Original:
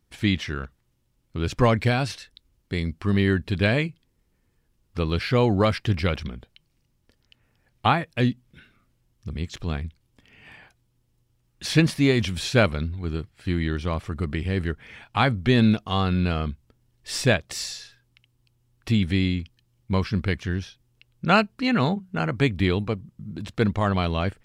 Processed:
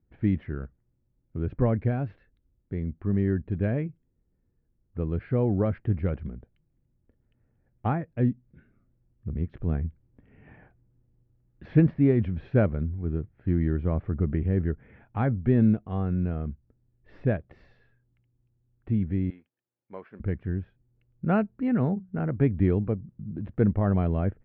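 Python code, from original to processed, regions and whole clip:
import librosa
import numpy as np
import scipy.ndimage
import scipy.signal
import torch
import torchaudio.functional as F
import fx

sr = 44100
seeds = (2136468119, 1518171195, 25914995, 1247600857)

y = fx.chain(x, sr, fx.dead_time(dead_ms=0.069),
    fx.highpass(hz=620.0, slope=12), at=(19.3, 20.2))
y = scipy.signal.sosfilt(scipy.signal.butter(4, 1500.0, 'lowpass', fs=sr, output='sos'), y)
y = fx.peak_eq(y, sr, hz=1100.0, db=-12.5, octaves=1.3)
y = fx.rider(y, sr, range_db=10, speed_s=2.0)
y = y * librosa.db_to_amplitude(-1.5)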